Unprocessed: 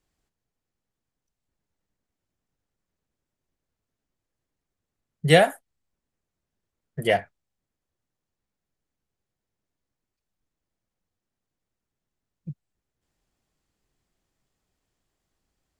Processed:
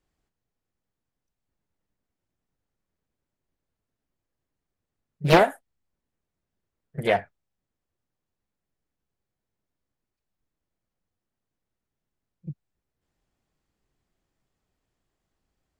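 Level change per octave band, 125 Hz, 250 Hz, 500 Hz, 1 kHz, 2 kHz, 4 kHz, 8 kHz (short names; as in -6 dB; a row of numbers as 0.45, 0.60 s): -1.5, +1.0, -1.0, +2.0, -2.0, -4.0, -6.0 dB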